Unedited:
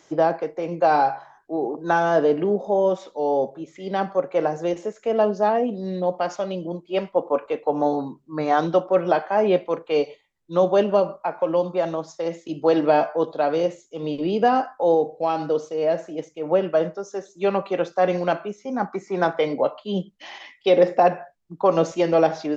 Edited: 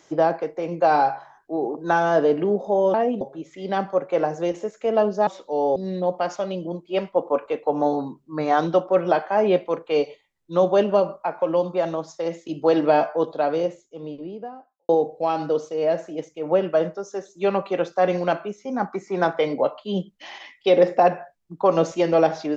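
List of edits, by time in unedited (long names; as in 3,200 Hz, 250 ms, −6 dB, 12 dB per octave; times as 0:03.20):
0:02.94–0:03.43: swap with 0:05.49–0:05.76
0:13.19–0:14.89: fade out and dull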